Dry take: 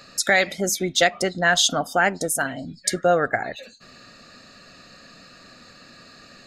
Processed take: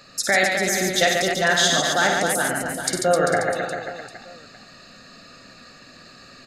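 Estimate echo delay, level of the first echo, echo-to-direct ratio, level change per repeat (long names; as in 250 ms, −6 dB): 53 ms, −6.5 dB, 1.0 dB, repeats not evenly spaced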